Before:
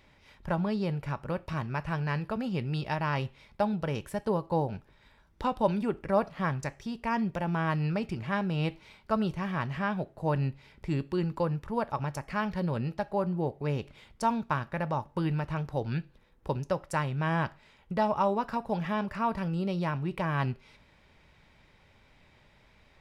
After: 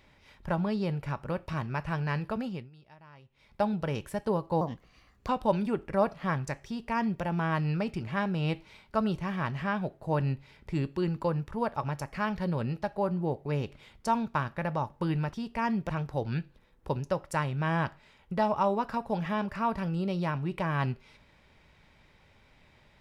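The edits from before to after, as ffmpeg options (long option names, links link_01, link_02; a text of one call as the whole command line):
ffmpeg -i in.wav -filter_complex "[0:a]asplit=7[link_01][link_02][link_03][link_04][link_05][link_06][link_07];[link_01]atrim=end=2.7,asetpts=PTS-STARTPTS,afade=type=out:start_time=2.39:duration=0.31:silence=0.0668344[link_08];[link_02]atrim=start=2.7:end=3.3,asetpts=PTS-STARTPTS,volume=-23.5dB[link_09];[link_03]atrim=start=3.3:end=4.614,asetpts=PTS-STARTPTS,afade=type=in:duration=0.31:silence=0.0668344[link_10];[link_04]atrim=start=4.61:end=5.44,asetpts=PTS-STARTPTS,asetrate=54243,aresample=44100[link_11];[link_05]atrim=start=5.436:end=15.492[link_12];[link_06]atrim=start=6.818:end=7.382[link_13];[link_07]atrim=start=15.488[link_14];[link_08][link_09][link_10]concat=n=3:v=0:a=1[link_15];[link_15][link_11]acrossfade=duration=0.004:curve1=hsin:curve2=hsin[link_16];[link_16][link_12]acrossfade=duration=0.004:curve1=hsin:curve2=hsin[link_17];[link_17][link_13]acrossfade=duration=0.004:curve1=hsin:curve2=hsin[link_18];[link_18][link_14]acrossfade=duration=0.004:curve1=hsin:curve2=hsin" out.wav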